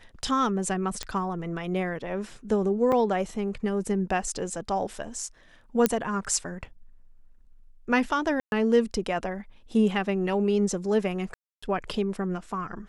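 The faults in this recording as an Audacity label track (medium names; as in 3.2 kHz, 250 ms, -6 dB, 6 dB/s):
1.030000	1.030000	pop -16 dBFS
2.920000	2.920000	dropout 3.6 ms
5.860000	5.860000	pop -6 dBFS
8.400000	8.520000	dropout 121 ms
11.340000	11.620000	dropout 285 ms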